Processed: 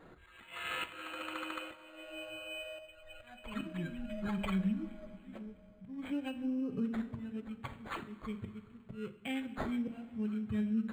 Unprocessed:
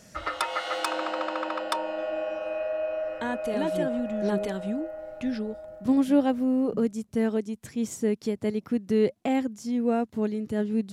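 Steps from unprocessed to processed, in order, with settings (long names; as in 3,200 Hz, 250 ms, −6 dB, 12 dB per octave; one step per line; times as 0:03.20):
spectral dynamics exaggerated over time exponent 1.5
flat-topped bell 4,300 Hz +11 dB
0:02.79–0:05.07: phase shifter 1.1 Hz, delay 1.7 ms, feedback 72%
volume swells 508 ms
mains-hum notches 50/100/150/200/250/300/350/400/450 Hz
convolution reverb, pre-delay 3 ms, DRR 7.5 dB
downward compressor, threshold −28 dBFS, peak gain reduction 7 dB
guitar amp tone stack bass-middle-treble 6-0-2
notch filter 2,700 Hz, Q 21
linearly interpolated sample-rate reduction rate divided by 8×
level +17.5 dB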